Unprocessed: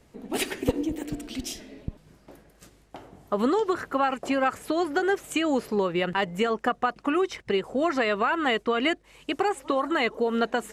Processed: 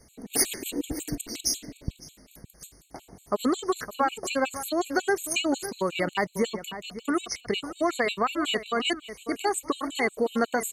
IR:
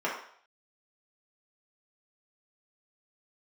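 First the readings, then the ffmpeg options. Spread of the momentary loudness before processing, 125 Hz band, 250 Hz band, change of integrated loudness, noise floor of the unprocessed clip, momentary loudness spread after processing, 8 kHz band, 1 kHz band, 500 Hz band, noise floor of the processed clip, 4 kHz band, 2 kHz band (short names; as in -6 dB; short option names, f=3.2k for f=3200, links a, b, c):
10 LU, -2.0 dB, -2.5 dB, -1.5 dB, -59 dBFS, 13 LU, +10.5 dB, -3.0 dB, -3.0 dB, -58 dBFS, +2.0 dB, -2.0 dB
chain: -filter_complex "[0:a]bass=f=250:g=2,treble=f=4k:g=15,asplit=2[a][b];[b]adelay=559.8,volume=-12dB,highshelf=f=4k:g=-12.6[c];[a][c]amix=inputs=2:normalize=0,afftfilt=real='re*gt(sin(2*PI*5.5*pts/sr)*(1-2*mod(floor(b*sr/1024/2200),2)),0)':imag='im*gt(sin(2*PI*5.5*pts/sr)*(1-2*mod(floor(b*sr/1024/2200),2)),0)':win_size=1024:overlap=0.75"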